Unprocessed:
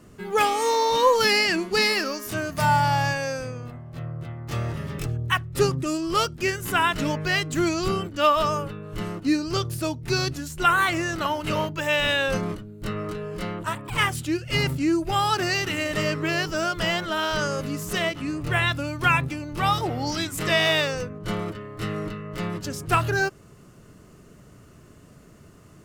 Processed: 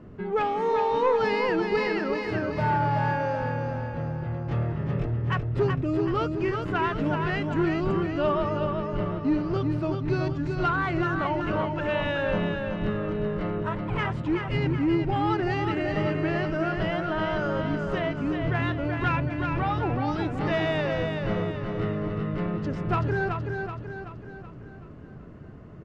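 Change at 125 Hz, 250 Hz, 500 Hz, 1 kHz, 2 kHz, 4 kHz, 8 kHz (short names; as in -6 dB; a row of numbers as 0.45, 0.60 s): +1.5 dB, +1.0 dB, -0.5 dB, -3.5 dB, -6.5 dB, -13.5 dB, under -25 dB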